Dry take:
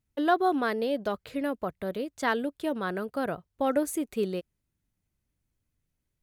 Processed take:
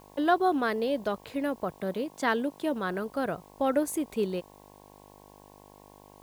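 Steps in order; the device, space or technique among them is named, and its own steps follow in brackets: video cassette with head-switching buzz (buzz 50 Hz, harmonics 22, -54 dBFS 0 dB/oct; white noise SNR 33 dB); 1.78–2.74 resonant low shelf 110 Hz -8 dB, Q 1.5

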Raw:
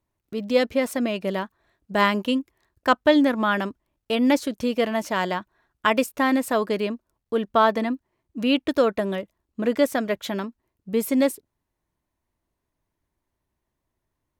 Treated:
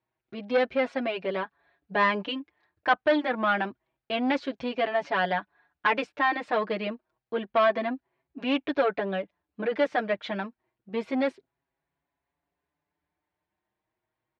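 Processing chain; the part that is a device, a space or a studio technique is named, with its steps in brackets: barber-pole flanger into a guitar amplifier (endless flanger 5.9 ms +0.28 Hz; soft clip -17.5 dBFS, distortion -13 dB; speaker cabinet 96–4100 Hz, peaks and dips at 98 Hz -9 dB, 230 Hz -7 dB, 760 Hz +6 dB, 1600 Hz +5 dB, 2300 Hz +4 dB)

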